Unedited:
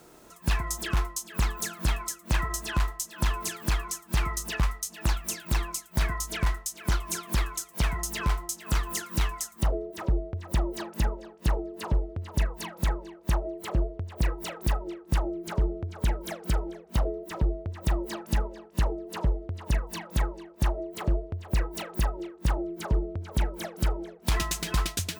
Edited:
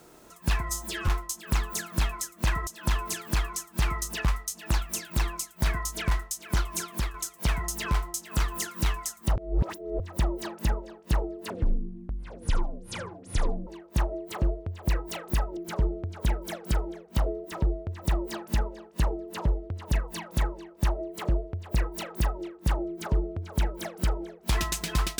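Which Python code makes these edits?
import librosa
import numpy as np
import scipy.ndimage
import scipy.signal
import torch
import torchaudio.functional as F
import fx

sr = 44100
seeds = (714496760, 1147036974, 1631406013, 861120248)

y = fx.edit(x, sr, fx.stretch_span(start_s=0.69, length_s=0.26, factor=1.5),
    fx.cut(start_s=2.54, length_s=0.48),
    fx.fade_out_to(start_s=7.13, length_s=0.36, curve='qsin', floor_db=-9.0),
    fx.reverse_span(start_s=9.71, length_s=0.64),
    fx.speed_span(start_s=11.85, length_s=1.15, speed=0.53),
    fx.cut(start_s=14.9, length_s=0.46), tone=tone)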